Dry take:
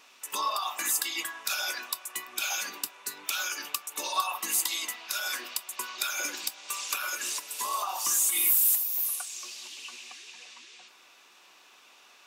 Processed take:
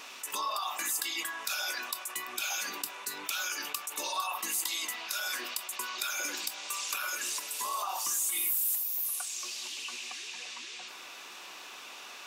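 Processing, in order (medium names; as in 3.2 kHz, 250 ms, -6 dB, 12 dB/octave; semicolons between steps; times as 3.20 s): level flattener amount 50%; trim -7.5 dB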